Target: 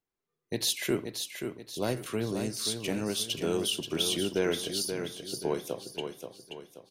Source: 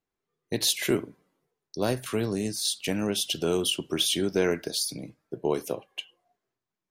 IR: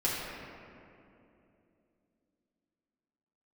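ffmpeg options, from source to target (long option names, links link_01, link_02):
-filter_complex "[0:a]aecho=1:1:530|1060|1590|2120|2650:0.447|0.183|0.0751|0.0308|0.0126,asplit=2[link_01][link_02];[1:a]atrim=start_sample=2205,afade=type=out:start_time=0.23:duration=0.01,atrim=end_sample=10584[link_03];[link_02][link_03]afir=irnorm=-1:irlink=0,volume=-25.5dB[link_04];[link_01][link_04]amix=inputs=2:normalize=0,volume=-4.5dB"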